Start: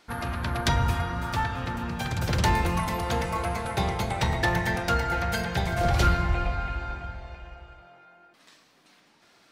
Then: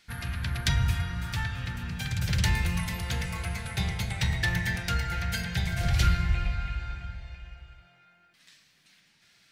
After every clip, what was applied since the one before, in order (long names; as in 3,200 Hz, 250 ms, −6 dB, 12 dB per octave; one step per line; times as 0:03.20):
flat-topped bell 550 Hz −13.5 dB 2.7 octaves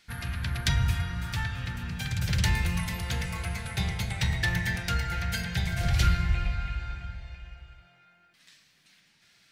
no processing that can be heard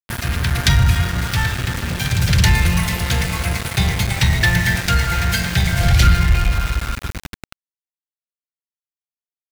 leveller curve on the samples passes 1
centre clipping without the shift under −30.5 dBFS
level +8.5 dB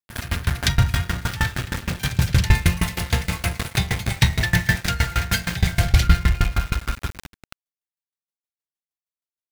tremolo with a ramp in dB decaying 6.4 Hz, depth 23 dB
level +3 dB